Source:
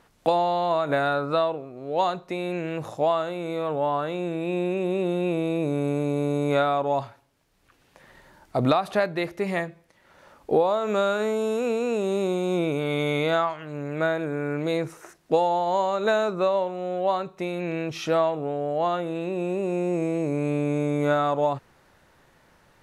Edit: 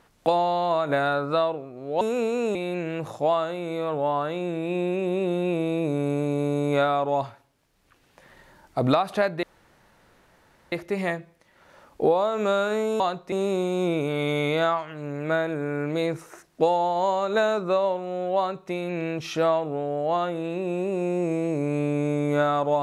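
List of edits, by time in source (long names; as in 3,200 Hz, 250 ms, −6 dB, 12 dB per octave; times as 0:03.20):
0:02.01–0:02.33: swap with 0:11.49–0:12.03
0:09.21: splice in room tone 1.29 s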